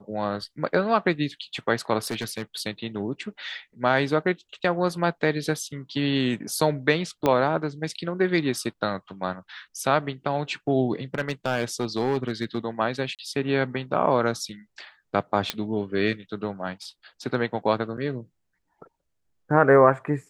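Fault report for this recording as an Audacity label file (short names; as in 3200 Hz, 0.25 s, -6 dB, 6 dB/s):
1.990000	2.420000	clipped -24 dBFS
7.260000	7.260000	pop -9 dBFS
11.150000	12.580000	clipped -18.5 dBFS
13.150000	13.190000	gap 38 ms
15.500000	15.500000	pop -8 dBFS
17.970000	17.980000	gap 7.4 ms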